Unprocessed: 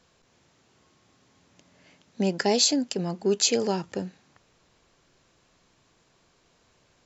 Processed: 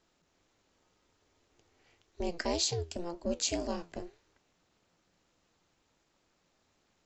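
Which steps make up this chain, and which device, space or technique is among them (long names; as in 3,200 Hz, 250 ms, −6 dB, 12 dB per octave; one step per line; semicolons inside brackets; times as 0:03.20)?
alien voice (ring modulation 170 Hz; flanger 1.9 Hz, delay 8.4 ms, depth 4.4 ms, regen +80%)
level −2 dB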